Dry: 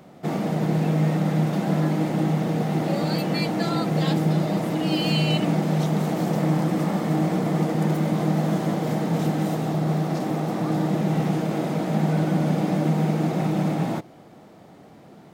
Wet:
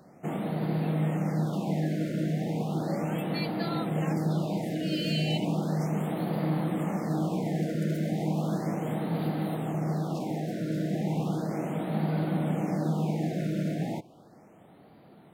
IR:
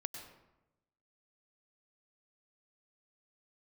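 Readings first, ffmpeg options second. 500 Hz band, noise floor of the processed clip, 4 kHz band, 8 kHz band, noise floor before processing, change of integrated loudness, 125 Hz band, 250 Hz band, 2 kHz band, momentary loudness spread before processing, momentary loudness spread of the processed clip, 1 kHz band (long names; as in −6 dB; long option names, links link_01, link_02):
−6.5 dB, −54 dBFS, −7.5 dB, −8.0 dB, −48 dBFS, −6.5 dB, −6.5 dB, −6.5 dB, −7.5 dB, 3 LU, 3 LU, −7.5 dB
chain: -af "afftfilt=real='re*(1-between(b*sr/1024,950*pow(6900/950,0.5+0.5*sin(2*PI*0.35*pts/sr))/1.41,950*pow(6900/950,0.5+0.5*sin(2*PI*0.35*pts/sr))*1.41))':imag='im*(1-between(b*sr/1024,950*pow(6900/950,0.5+0.5*sin(2*PI*0.35*pts/sr))/1.41,950*pow(6900/950,0.5+0.5*sin(2*PI*0.35*pts/sr))*1.41))':win_size=1024:overlap=0.75,volume=-6.5dB"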